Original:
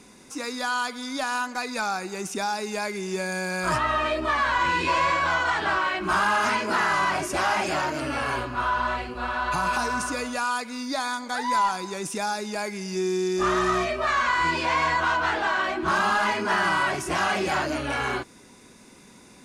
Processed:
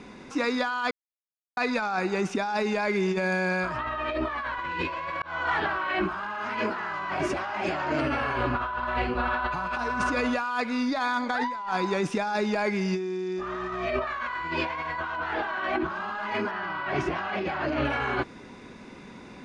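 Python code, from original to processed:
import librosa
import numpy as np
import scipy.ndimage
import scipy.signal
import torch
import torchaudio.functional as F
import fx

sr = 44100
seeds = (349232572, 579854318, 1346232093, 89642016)

y = fx.lowpass(x, sr, hz=5000.0, slope=12, at=(16.51, 17.85))
y = fx.edit(y, sr, fx.silence(start_s=0.91, length_s=0.66),
    fx.fade_in_span(start_s=5.22, length_s=0.73), tone=tone)
y = scipy.signal.sosfilt(scipy.signal.butter(2, 3000.0, 'lowpass', fs=sr, output='sos'), y)
y = fx.over_compress(y, sr, threshold_db=-31.0, ratio=-1.0)
y = y * 10.0 ** (2.0 / 20.0)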